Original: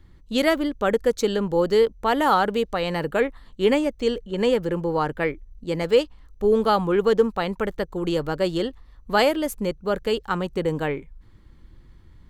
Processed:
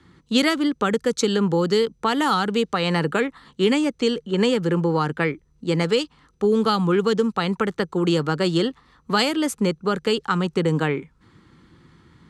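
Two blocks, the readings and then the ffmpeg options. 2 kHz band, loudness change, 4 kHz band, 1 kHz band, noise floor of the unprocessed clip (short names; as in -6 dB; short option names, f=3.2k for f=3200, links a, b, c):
+2.0 dB, +1.0 dB, +5.0 dB, -0.5 dB, -51 dBFS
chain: -filter_complex "[0:a]highpass=160,equalizer=f=160:t=q:w=4:g=4,equalizer=f=600:t=q:w=4:g=-8,equalizer=f=1.3k:t=q:w=4:g=5,lowpass=f=9.7k:w=0.5412,lowpass=f=9.7k:w=1.3066,acrossover=split=240|3000[a][b][c];[b]acompressor=threshold=-27dB:ratio=6[d];[a][d][c]amix=inputs=3:normalize=0,volume=7dB"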